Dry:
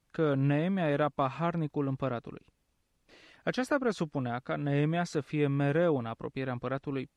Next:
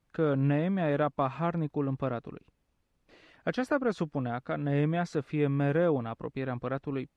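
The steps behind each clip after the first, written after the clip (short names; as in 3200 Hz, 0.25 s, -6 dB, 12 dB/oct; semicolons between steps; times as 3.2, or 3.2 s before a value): high shelf 3400 Hz -8.5 dB; gain +1 dB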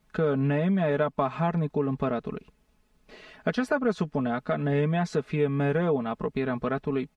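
comb 4.7 ms, depth 70%; compressor 2:1, threshold -34 dBFS, peak gain reduction 8 dB; gain +7.5 dB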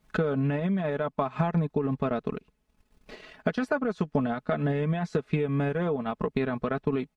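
limiter -21 dBFS, peak gain reduction 7.5 dB; transient shaper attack +7 dB, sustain -8 dB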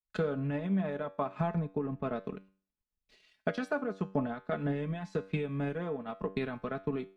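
resonator 96 Hz, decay 0.57 s, harmonics all, mix 60%; three-band expander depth 100%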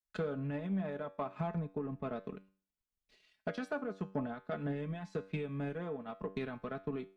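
soft clip -21.5 dBFS, distortion -22 dB; gain -4 dB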